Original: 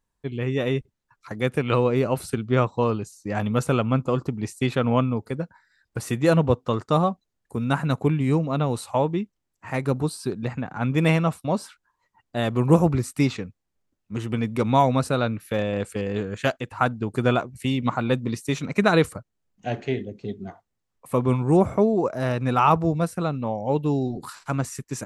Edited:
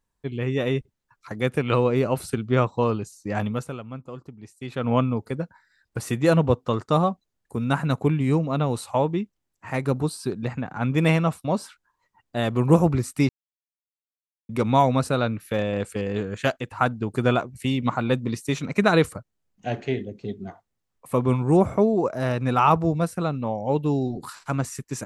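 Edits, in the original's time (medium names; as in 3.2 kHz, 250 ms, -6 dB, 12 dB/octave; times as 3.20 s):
3.43–4.93 s: dip -14.5 dB, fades 0.40 s quadratic
13.29–14.49 s: mute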